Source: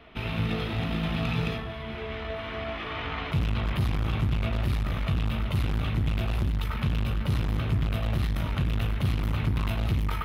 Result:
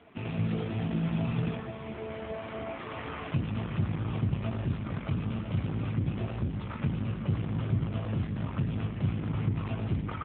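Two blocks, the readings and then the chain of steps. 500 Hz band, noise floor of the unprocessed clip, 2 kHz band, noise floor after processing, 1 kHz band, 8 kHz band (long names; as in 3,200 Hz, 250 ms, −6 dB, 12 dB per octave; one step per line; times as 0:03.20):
−2.5 dB, −35 dBFS, −8.0 dB, −40 dBFS, −5.5 dB, can't be measured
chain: high-shelf EQ 2,000 Hz −8.5 dB
on a send: echo with shifted repeats 424 ms, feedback 58%, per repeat −120 Hz, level −16.5 dB
on the sum: four-comb reverb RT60 1.9 s, combs from 30 ms, DRR 16 dB
AMR narrowband 7.4 kbit/s 8,000 Hz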